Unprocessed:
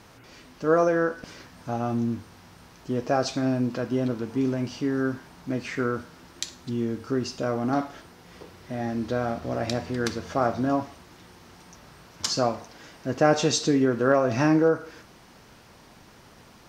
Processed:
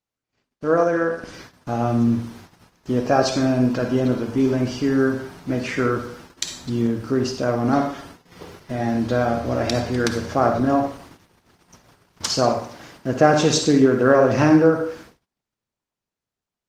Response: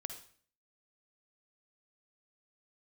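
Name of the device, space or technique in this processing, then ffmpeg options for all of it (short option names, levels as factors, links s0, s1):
speakerphone in a meeting room: -filter_complex "[1:a]atrim=start_sample=2205[s0];[0:a][s0]afir=irnorm=-1:irlink=0,dynaudnorm=f=140:g=21:m=1.5,agate=range=0.01:threshold=0.00501:ratio=16:detection=peak,volume=1.78" -ar 48000 -c:a libopus -b:a 20k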